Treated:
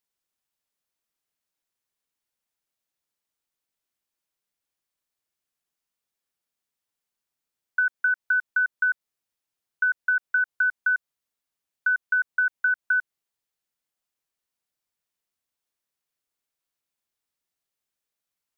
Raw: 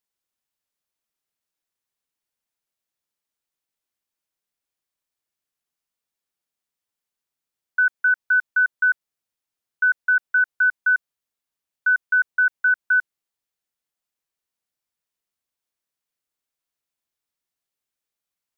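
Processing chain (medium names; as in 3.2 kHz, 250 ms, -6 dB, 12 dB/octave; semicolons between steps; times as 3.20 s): compression, threshold -20 dBFS, peak gain reduction 5 dB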